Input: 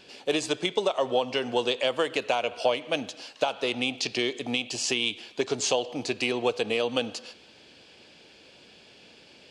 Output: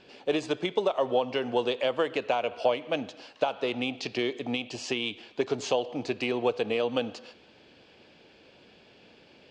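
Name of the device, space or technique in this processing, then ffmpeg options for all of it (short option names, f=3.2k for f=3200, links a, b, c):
through cloth: -af "lowpass=7.3k,highshelf=f=3.4k:g=-12"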